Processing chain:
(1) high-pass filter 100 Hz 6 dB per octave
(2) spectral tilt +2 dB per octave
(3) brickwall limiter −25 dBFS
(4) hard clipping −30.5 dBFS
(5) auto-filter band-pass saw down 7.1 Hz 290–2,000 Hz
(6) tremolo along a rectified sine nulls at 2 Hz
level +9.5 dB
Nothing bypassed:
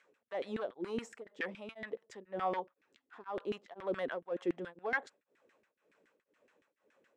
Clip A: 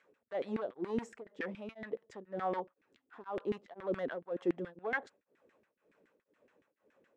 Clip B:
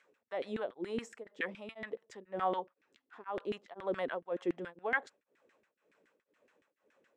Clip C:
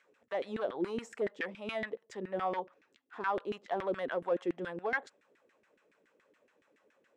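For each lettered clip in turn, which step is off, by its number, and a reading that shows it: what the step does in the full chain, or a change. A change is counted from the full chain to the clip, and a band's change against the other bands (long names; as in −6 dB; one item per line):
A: 2, 4 kHz band −6.0 dB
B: 4, distortion level −15 dB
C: 6, change in momentary loudness spread −4 LU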